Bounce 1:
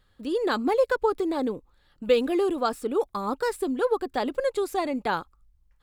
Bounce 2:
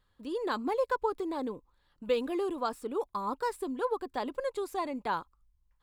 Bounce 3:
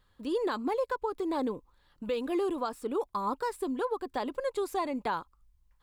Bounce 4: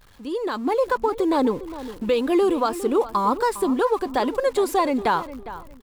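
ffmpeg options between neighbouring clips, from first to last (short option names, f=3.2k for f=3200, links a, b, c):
-af "equalizer=f=1k:w=6.8:g=10,volume=-8dB"
-af "alimiter=level_in=2.5dB:limit=-24dB:level=0:latency=1:release=305,volume=-2.5dB,volume=4.5dB"
-filter_complex "[0:a]aeval=exprs='val(0)+0.5*0.00316*sgn(val(0))':c=same,dynaudnorm=f=440:g=3:m=9dB,asplit=2[a][b];[b]adelay=407,lowpass=f=2.6k:p=1,volume=-14dB,asplit=2[c][d];[d]adelay=407,lowpass=f=2.6k:p=1,volume=0.24,asplit=2[e][f];[f]adelay=407,lowpass=f=2.6k:p=1,volume=0.24[g];[a][c][e][g]amix=inputs=4:normalize=0,volume=1.5dB"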